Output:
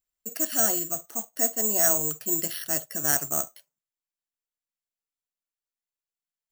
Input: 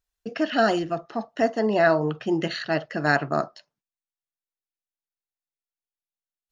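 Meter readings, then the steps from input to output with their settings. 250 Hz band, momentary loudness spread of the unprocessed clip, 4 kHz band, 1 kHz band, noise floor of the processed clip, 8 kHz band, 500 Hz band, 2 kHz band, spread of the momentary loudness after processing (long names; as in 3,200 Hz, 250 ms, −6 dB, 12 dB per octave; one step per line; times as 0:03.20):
−10.5 dB, 10 LU, −4.0 dB, −10.5 dB, below −85 dBFS, can't be measured, −10.5 dB, −10.5 dB, 9 LU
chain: bad sample-rate conversion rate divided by 6×, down none, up zero stuff
noise that follows the level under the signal 25 dB
level −10.5 dB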